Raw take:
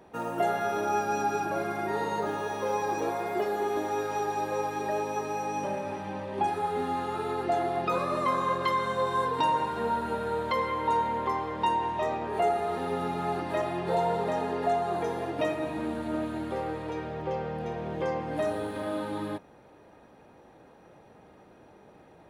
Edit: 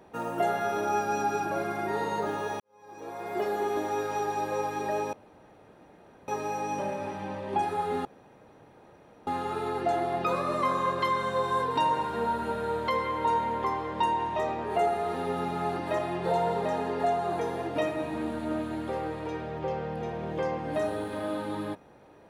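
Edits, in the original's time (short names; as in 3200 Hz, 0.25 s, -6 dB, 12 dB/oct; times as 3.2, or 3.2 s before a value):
2.6–3.45 fade in quadratic
5.13 insert room tone 1.15 s
6.9 insert room tone 1.22 s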